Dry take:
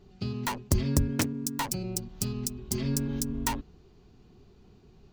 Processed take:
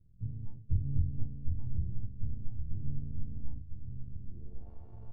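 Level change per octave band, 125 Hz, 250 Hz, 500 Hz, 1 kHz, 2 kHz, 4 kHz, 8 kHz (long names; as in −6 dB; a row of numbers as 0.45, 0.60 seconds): −3.0 dB, −15.5 dB, below −20 dB, below −30 dB, below −40 dB, below −40 dB, below −40 dB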